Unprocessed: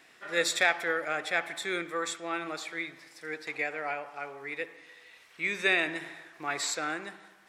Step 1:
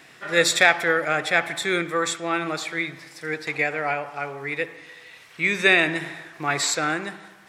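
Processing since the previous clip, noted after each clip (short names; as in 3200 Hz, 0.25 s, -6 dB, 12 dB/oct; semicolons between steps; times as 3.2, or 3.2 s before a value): bell 130 Hz +10.5 dB 1 oct; gain +8.5 dB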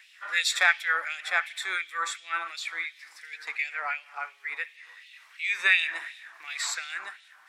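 LFO high-pass sine 2.8 Hz 990–3200 Hz; gain -8 dB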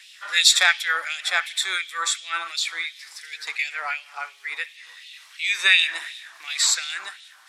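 band shelf 6200 Hz +10 dB 2.3 oct; gain +2.5 dB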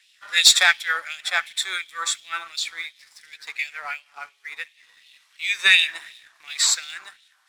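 sample leveller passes 1; upward expander 1.5:1, over -29 dBFS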